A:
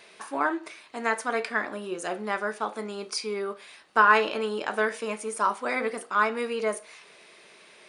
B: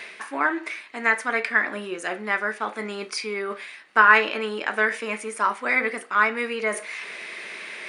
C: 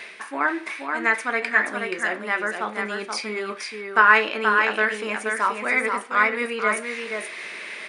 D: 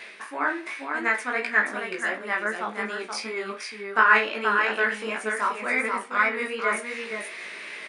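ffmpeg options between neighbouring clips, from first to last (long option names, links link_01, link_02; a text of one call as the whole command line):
ffmpeg -i in.wav -af "equalizer=frequency=125:width_type=o:width=1:gain=-5,equalizer=frequency=250:width_type=o:width=1:gain=4,equalizer=frequency=2000:width_type=o:width=1:gain=12,areverse,acompressor=mode=upward:threshold=-24dB:ratio=2.5,areverse,volume=-1.5dB" out.wav
ffmpeg -i in.wav -af "aecho=1:1:478:0.562" out.wav
ffmpeg -i in.wav -filter_complex "[0:a]flanger=delay=16.5:depth=3.8:speed=2.7,asplit=2[link_01][link_02];[link_02]adelay=32,volume=-13dB[link_03];[link_01][link_03]amix=inputs=2:normalize=0" out.wav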